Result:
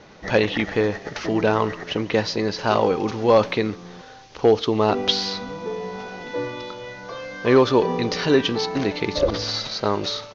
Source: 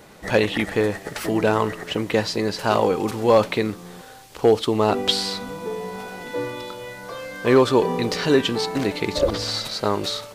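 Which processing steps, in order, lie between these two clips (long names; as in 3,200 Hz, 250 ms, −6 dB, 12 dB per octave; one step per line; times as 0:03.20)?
Butterworth low-pass 6,500 Hz 96 dB per octave
far-end echo of a speakerphone 140 ms, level −23 dB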